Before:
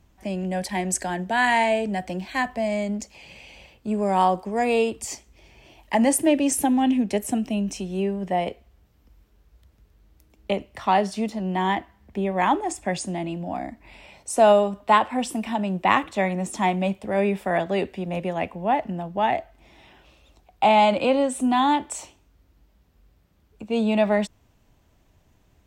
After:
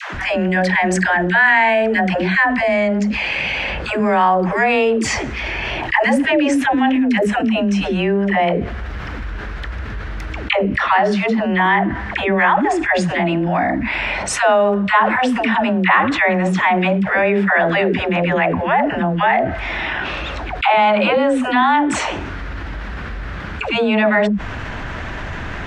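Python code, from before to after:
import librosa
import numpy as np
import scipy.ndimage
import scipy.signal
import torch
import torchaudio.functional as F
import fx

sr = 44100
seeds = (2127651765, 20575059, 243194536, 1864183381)

y = scipy.signal.sosfilt(scipy.signal.butter(2, 4000.0, 'lowpass', fs=sr, output='sos'), x)
y = fx.peak_eq(y, sr, hz=1600.0, db=14.5, octaves=1.2)
y = fx.dispersion(y, sr, late='lows', ms=145.0, hz=460.0)
y = fx.env_flatten(y, sr, amount_pct=70)
y = y * librosa.db_to_amplitude(-5.0)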